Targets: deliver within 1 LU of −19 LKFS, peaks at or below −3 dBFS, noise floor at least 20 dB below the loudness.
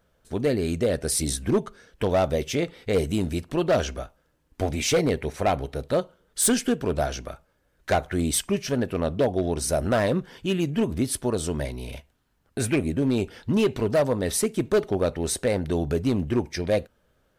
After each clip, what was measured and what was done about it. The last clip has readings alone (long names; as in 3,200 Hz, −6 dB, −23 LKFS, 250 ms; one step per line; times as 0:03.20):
share of clipped samples 1.3%; peaks flattened at −15.5 dBFS; integrated loudness −25.5 LKFS; sample peak −15.5 dBFS; target loudness −19.0 LKFS
→ clipped peaks rebuilt −15.5 dBFS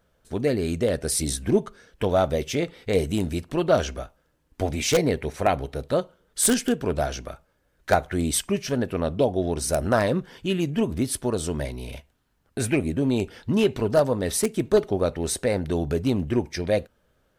share of clipped samples 0.0%; integrated loudness −25.0 LKFS; sample peak −6.5 dBFS; target loudness −19.0 LKFS
→ level +6 dB
brickwall limiter −3 dBFS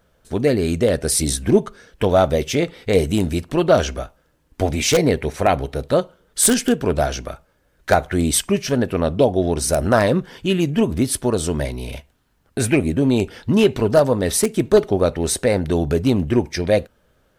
integrated loudness −19.0 LKFS; sample peak −3.0 dBFS; background noise floor −62 dBFS